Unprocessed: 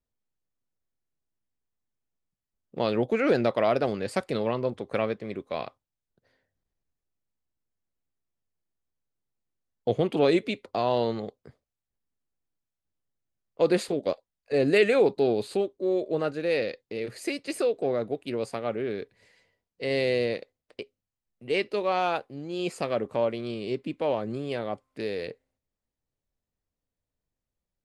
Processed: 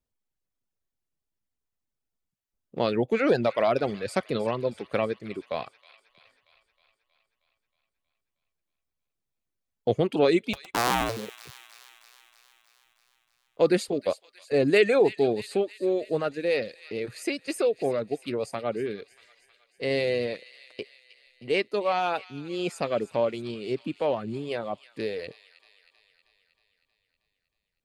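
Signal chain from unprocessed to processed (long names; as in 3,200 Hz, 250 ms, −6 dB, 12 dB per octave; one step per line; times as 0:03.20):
0:10.53–0:11.17: sub-harmonics by changed cycles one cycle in 2, inverted
reverb reduction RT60 0.83 s
delay with a high-pass on its return 316 ms, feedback 62%, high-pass 2,100 Hz, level −13 dB
level +1.5 dB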